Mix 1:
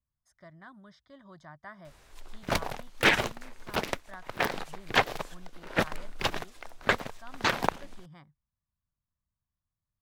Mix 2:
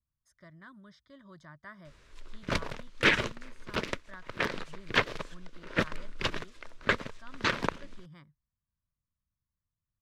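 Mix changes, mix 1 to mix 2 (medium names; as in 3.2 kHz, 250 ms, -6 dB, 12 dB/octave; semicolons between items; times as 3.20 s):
background: add distance through air 64 m; master: add peaking EQ 770 Hz -14.5 dB 0.37 oct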